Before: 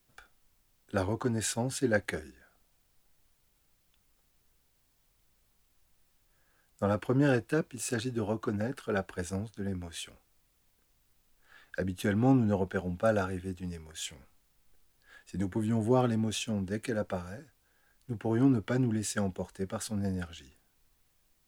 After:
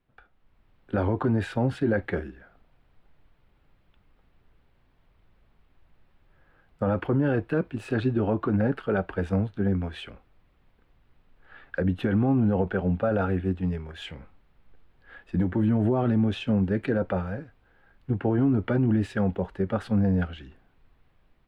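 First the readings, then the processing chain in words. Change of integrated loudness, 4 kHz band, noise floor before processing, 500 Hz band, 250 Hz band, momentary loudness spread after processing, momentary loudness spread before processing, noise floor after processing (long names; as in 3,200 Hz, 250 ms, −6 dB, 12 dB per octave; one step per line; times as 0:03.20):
+5.5 dB, −1.5 dB, −72 dBFS, +4.5 dB, +6.0 dB, 10 LU, 14 LU, −65 dBFS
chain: brickwall limiter −26 dBFS, peak gain reduction 11 dB
automatic gain control gain up to 10 dB
high-frequency loss of the air 480 metres
level +1.5 dB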